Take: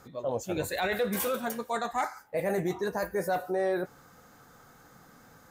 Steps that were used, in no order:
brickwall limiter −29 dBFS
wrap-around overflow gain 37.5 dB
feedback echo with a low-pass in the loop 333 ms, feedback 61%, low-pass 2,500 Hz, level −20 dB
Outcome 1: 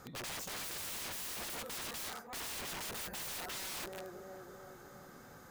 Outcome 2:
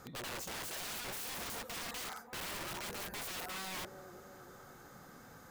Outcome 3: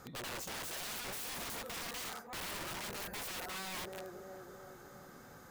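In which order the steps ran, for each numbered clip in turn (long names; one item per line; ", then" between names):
feedback echo with a low-pass in the loop, then wrap-around overflow, then brickwall limiter
brickwall limiter, then feedback echo with a low-pass in the loop, then wrap-around overflow
feedback echo with a low-pass in the loop, then brickwall limiter, then wrap-around overflow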